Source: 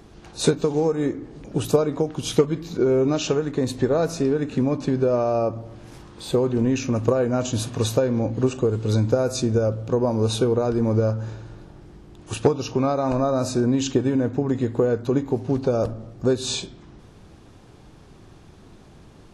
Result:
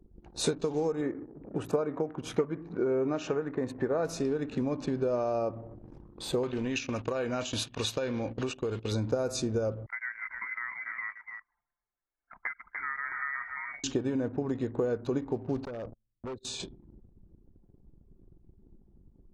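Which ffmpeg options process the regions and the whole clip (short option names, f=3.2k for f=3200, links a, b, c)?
-filter_complex "[0:a]asettb=1/sr,asplit=3[a][b][c];[a]atrim=end=1.014[d];[b]atrim=start=1.01:end=4.05,asetpts=PTS-STARTPTS,afade=t=in:d=0.004:c=qsin,afade=t=out:st=3.036:d=0.004:c=qsin,highpass=f=110:p=1,highshelf=f=2.6k:t=q:w=1.5:g=-9[e];[c]atrim=start=4.046[f];[d][e]acrossfade=d=0.004:c1=hsin:c2=qsin[g];[g][f]acrossfade=d=0.004:c1=qsin:c2=hsin,asettb=1/sr,asplit=3[h][i][j];[h]atrim=end=6.434[k];[i]atrim=start=6.43:end=8.92,asetpts=PTS-STARTPTS,afade=t=in:d=0.004:c=qsin,afade=t=out:st=2.486:d=0.004:c=qsin,agate=range=-10dB:threshold=-27dB:ratio=16:release=100:detection=peak,equalizer=f=2.9k:w=0.57:g=13,acompressor=threshold=-21dB:ratio=3:attack=3.2:release=140:knee=1:detection=peak[l];[j]atrim=start=8.916[m];[k][l]acrossfade=d=0.004:c1=hsin:c2=qsin[n];[n][m]acrossfade=d=0.004:c1=qsin:c2=hsin,asettb=1/sr,asplit=3[o][p][q];[o]atrim=end=9.864[r];[p]atrim=start=9.86:end=13.84,asetpts=PTS-STARTPTS,afade=t=in:d=0.004:c=qsin,afade=t=out:st=3.976:d=0.004:c=qsin,highpass=980,aecho=1:1:294:0.473,atrim=end_sample=175518,lowpass=f=2.1k:t=q:w=0.5098,lowpass=f=2.1k:t=q:w=0.6013,lowpass=f=2.1k:t=q:w=0.9,lowpass=f=2.1k:t=q:w=2.563,afreqshift=-2500[s];[q]atrim=start=13.836[t];[r][s]acrossfade=d=0.004:c1=hsin:c2=qsin[u];[u][t]acrossfade=d=0.004:c1=qsin:c2=hsin,asettb=1/sr,asplit=3[v][w][x];[v]atrim=end=15.654[y];[w]atrim=start=15.65:end=16.6,asetpts=PTS-STARTPTS,afade=t=in:d=0.004:c=qsin,afade=t=out:st=0.946:d=0.004:c=qsin,agate=range=-27dB:threshold=-29dB:ratio=16:release=100:detection=peak,aeval=exprs='0.15*(abs(mod(val(0)/0.15+3,4)-2)-1)':c=same,acompressor=threshold=-31dB:ratio=8:attack=3.2:release=140:knee=1:detection=peak[z];[x]atrim=start=16.596[aa];[y][z]acrossfade=d=0.004:c1=hsin:c2=qsin[ab];[ab][aa]acrossfade=d=0.004:c1=qsin:c2=hsin,anlmdn=0.631,equalizer=f=110:t=o:w=1.9:g=-4.5,acompressor=threshold=-33dB:ratio=1.5,volume=-2.5dB"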